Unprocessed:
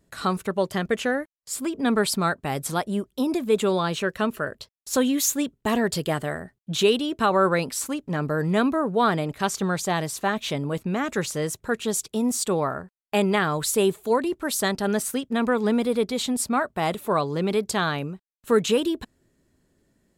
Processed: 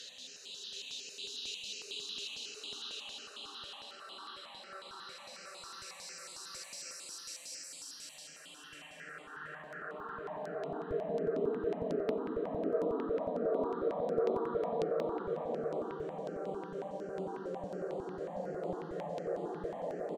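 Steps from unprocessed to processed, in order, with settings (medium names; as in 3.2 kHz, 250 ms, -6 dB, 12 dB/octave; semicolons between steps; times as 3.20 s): echo from a far wall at 270 m, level -7 dB; Paulstretch 5.7×, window 1.00 s, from 6.51 s; flange 0.69 Hz, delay 8.1 ms, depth 7.8 ms, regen -54%; band-pass sweep 4.9 kHz -> 480 Hz, 7.89–11.30 s; stepped phaser 11 Hz 230–5700 Hz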